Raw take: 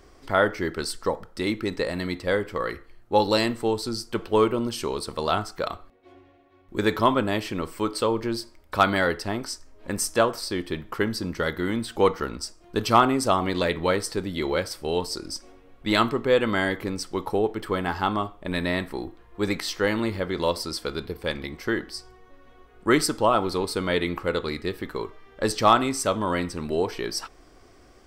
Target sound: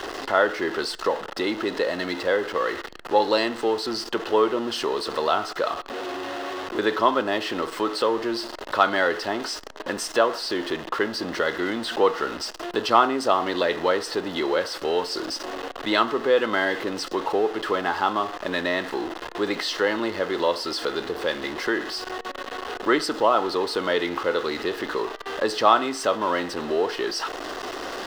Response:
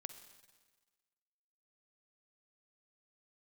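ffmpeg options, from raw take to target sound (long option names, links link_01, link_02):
-filter_complex "[0:a]aeval=exprs='val(0)+0.5*0.0376*sgn(val(0))':channel_layout=same,acrossover=split=290 4900:gain=0.0891 1 0.141[link_01][link_02][link_03];[link_01][link_02][link_03]amix=inputs=3:normalize=0,bandreject=frequency=2300:width=6.2,asplit=2[link_04][link_05];[link_05]acompressor=threshold=-32dB:ratio=6,volume=1dB[link_06];[link_04][link_06]amix=inputs=2:normalize=0,volume=-1dB"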